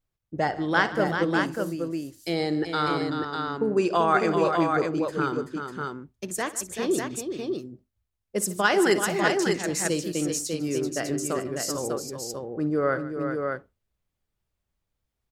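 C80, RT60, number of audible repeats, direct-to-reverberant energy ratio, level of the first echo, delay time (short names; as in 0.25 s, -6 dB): none, none, 4, none, -16.5 dB, 59 ms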